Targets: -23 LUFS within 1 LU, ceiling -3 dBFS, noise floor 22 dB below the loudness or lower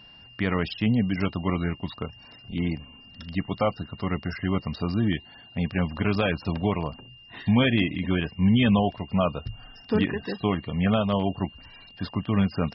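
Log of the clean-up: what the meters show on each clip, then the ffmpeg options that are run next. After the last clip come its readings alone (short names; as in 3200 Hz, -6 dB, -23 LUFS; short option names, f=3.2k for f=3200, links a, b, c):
steady tone 2800 Hz; tone level -48 dBFS; loudness -26.5 LUFS; peak -11.0 dBFS; loudness target -23.0 LUFS
-> -af "bandreject=f=2.8k:w=30"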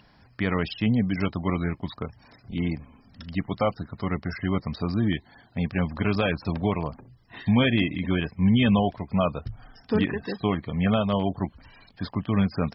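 steady tone none; loudness -26.5 LUFS; peak -11.0 dBFS; loudness target -23.0 LUFS
-> -af "volume=3.5dB"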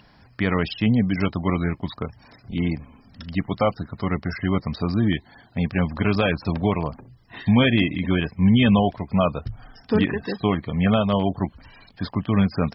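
loudness -23.0 LUFS; peak -7.5 dBFS; noise floor -54 dBFS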